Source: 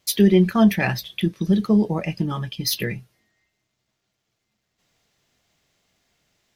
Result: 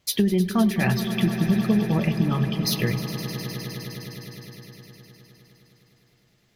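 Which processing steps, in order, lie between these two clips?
tone controls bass +5 dB, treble -3 dB; compressor, threshold -18 dBFS, peak gain reduction 10.5 dB; on a send: swelling echo 0.103 s, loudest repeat 5, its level -14 dB

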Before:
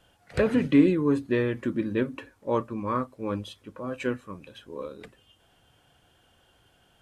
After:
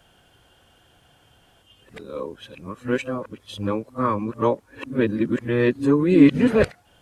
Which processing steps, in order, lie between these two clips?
whole clip reversed; gain +5.5 dB

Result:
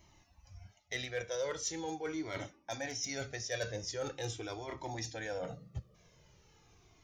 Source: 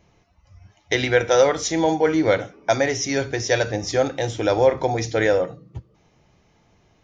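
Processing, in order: high shelf 4200 Hz +11.5 dB; reverse; compressor 6:1, threshold -30 dBFS, peak gain reduction 18 dB; reverse; hard clip -22 dBFS, distortion -29 dB; cascading flanger falling 0.42 Hz; gain -2 dB

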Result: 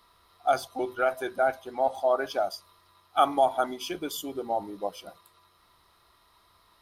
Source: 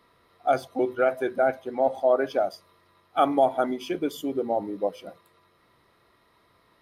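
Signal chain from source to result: graphic EQ 125/250/500/2000 Hz -11/-11/-12/-10 dB; gain +7 dB

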